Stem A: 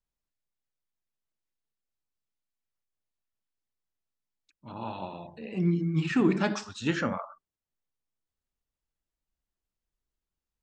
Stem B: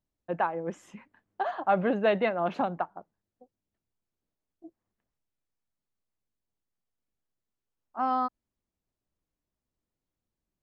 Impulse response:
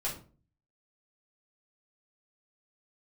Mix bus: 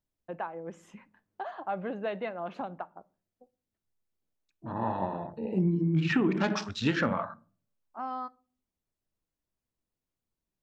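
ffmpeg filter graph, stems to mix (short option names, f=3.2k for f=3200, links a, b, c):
-filter_complex "[0:a]afwtdn=0.00631,acontrast=32,volume=0.5dB,asplit=2[a][b];[b]volume=-19.5dB[c];[1:a]acompressor=threshold=-40dB:ratio=1.5,volume=-3dB,asplit=2[d][e];[e]volume=-20dB[f];[2:a]atrim=start_sample=2205[g];[c][f]amix=inputs=2:normalize=0[h];[h][g]afir=irnorm=-1:irlink=0[i];[a][d][i]amix=inputs=3:normalize=0,acompressor=threshold=-23dB:ratio=6"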